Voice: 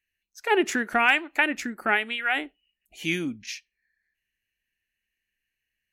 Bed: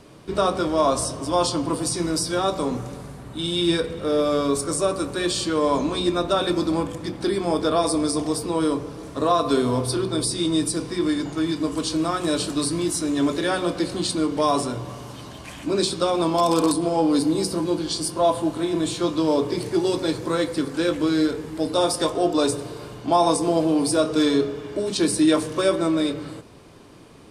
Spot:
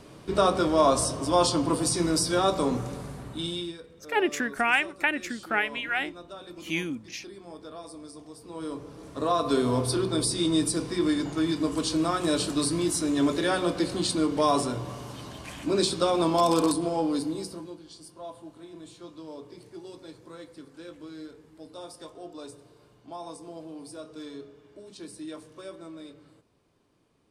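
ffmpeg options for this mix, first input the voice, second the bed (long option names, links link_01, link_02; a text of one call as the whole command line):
ffmpeg -i stem1.wav -i stem2.wav -filter_complex "[0:a]adelay=3650,volume=-3dB[link_01];[1:a]volume=18dB,afade=type=out:start_time=3.22:duration=0.51:silence=0.0944061,afade=type=in:start_time=8.38:duration=1.43:silence=0.112202,afade=type=out:start_time=16.43:duration=1.35:silence=0.112202[link_02];[link_01][link_02]amix=inputs=2:normalize=0" out.wav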